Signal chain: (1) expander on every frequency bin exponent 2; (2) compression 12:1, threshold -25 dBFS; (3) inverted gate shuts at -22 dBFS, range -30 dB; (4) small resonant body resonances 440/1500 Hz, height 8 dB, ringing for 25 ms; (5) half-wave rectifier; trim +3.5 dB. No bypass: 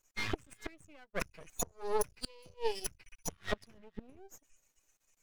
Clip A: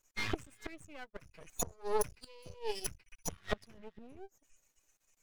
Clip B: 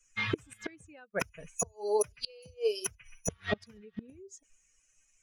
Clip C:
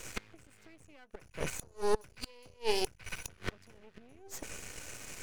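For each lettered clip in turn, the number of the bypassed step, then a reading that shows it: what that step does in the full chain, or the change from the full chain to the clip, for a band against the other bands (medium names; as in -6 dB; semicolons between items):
2, mean gain reduction 3.5 dB; 5, 1 kHz band -4.5 dB; 1, 4 kHz band +3.0 dB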